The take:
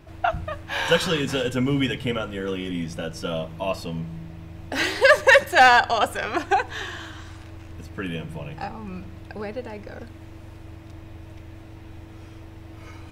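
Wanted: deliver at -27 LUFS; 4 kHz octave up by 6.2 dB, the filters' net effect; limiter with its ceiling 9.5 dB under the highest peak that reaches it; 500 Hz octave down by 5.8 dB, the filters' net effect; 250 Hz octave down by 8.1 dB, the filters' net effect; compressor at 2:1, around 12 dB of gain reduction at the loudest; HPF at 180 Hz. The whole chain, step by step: high-pass 180 Hz; peaking EQ 250 Hz -7 dB; peaking EQ 500 Hz -5.5 dB; peaking EQ 4 kHz +8.5 dB; compression 2:1, threshold -32 dBFS; trim +7 dB; peak limiter -15 dBFS

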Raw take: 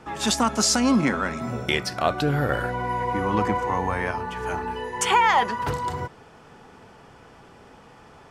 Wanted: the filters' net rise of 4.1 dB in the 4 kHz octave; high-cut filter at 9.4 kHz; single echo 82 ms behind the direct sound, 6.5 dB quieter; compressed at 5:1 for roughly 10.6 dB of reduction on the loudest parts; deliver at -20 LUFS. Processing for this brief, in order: low-pass 9.4 kHz; peaking EQ 4 kHz +5.5 dB; compression 5:1, threshold -27 dBFS; delay 82 ms -6.5 dB; trim +9.5 dB

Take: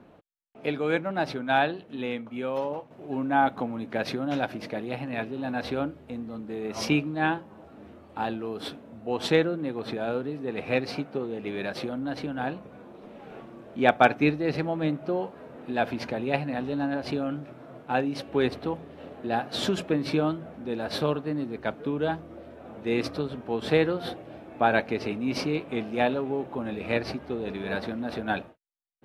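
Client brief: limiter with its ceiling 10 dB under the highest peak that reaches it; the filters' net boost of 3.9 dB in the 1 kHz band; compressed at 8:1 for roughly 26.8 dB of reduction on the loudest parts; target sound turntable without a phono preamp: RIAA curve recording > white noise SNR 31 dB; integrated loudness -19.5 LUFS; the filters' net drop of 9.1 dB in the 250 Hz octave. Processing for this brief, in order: peaking EQ 250 Hz -4.5 dB; peaking EQ 1 kHz +7 dB; compression 8:1, threshold -39 dBFS; peak limiter -34 dBFS; RIAA curve recording; white noise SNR 31 dB; trim +26 dB

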